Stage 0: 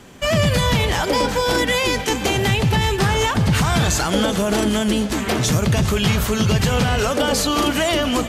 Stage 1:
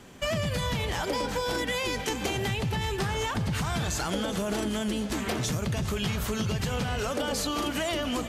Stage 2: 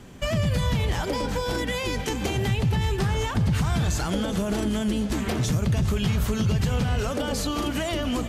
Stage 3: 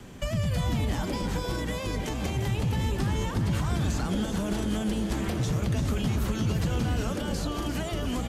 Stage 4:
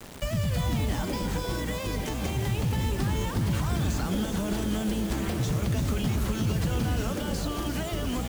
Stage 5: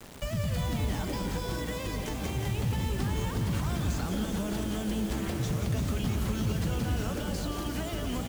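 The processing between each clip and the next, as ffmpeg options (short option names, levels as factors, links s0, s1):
-af "acompressor=threshold=0.1:ratio=6,volume=0.501"
-af "lowshelf=f=230:g=9.5"
-filter_complex "[0:a]acrossover=split=220|510|1200|5500[s0][s1][s2][s3][s4];[s0]acompressor=threshold=0.0562:ratio=4[s5];[s1]acompressor=threshold=0.00631:ratio=4[s6];[s2]acompressor=threshold=0.01:ratio=4[s7];[s3]acompressor=threshold=0.00794:ratio=4[s8];[s4]acompressor=threshold=0.00501:ratio=4[s9];[s5][s6][s7][s8][s9]amix=inputs=5:normalize=0,asplit=6[s10][s11][s12][s13][s14][s15];[s11]adelay=347,afreqshift=120,volume=0.355[s16];[s12]adelay=694,afreqshift=240,volume=0.153[s17];[s13]adelay=1041,afreqshift=360,volume=0.0653[s18];[s14]adelay=1388,afreqshift=480,volume=0.0282[s19];[s15]adelay=1735,afreqshift=600,volume=0.0122[s20];[s10][s16][s17][s18][s19][s20]amix=inputs=6:normalize=0"
-af "acrusher=bits=6:mix=0:aa=0.000001"
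-af "aecho=1:1:176:0.376,volume=0.668"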